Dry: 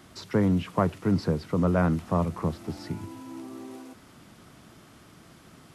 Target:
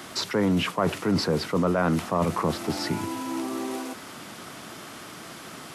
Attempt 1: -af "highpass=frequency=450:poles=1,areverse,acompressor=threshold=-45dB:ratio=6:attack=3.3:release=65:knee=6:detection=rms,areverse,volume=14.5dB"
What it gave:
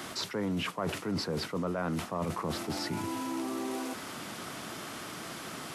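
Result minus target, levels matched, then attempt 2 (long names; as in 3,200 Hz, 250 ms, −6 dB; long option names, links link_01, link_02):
downward compressor: peak gain reduction +9.5 dB
-af "highpass=frequency=450:poles=1,areverse,acompressor=threshold=-33.5dB:ratio=6:attack=3.3:release=65:knee=6:detection=rms,areverse,volume=14.5dB"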